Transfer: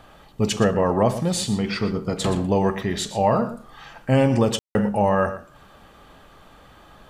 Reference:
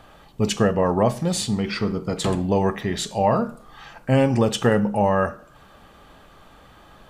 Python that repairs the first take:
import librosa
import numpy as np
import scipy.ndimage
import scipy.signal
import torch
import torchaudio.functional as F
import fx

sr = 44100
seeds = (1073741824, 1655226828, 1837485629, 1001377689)

y = fx.fix_ambience(x, sr, seeds[0], print_start_s=5.47, print_end_s=5.97, start_s=4.59, end_s=4.75)
y = fx.fix_echo_inverse(y, sr, delay_ms=118, level_db=-13.5)